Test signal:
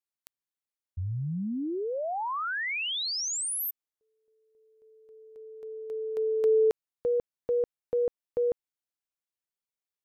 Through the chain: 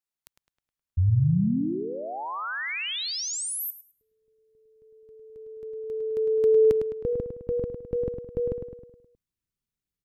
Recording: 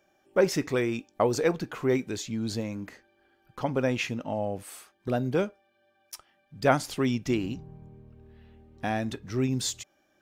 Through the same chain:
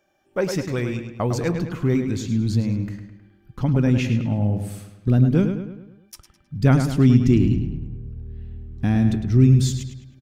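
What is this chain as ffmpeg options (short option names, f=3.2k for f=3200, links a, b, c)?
-filter_complex "[0:a]asubboost=boost=10.5:cutoff=200,asplit=2[a][b];[b]adelay=105,lowpass=f=4.5k:p=1,volume=-7dB,asplit=2[c][d];[d]adelay=105,lowpass=f=4.5k:p=1,volume=0.5,asplit=2[e][f];[f]adelay=105,lowpass=f=4.5k:p=1,volume=0.5,asplit=2[g][h];[h]adelay=105,lowpass=f=4.5k:p=1,volume=0.5,asplit=2[i][j];[j]adelay=105,lowpass=f=4.5k:p=1,volume=0.5,asplit=2[k][l];[l]adelay=105,lowpass=f=4.5k:p=1,volume=0.5[m];[c][e][g][i][k][m]amix=inputs=6:normalize=0[n];[a][n]amix=inputs=2:normalize=0"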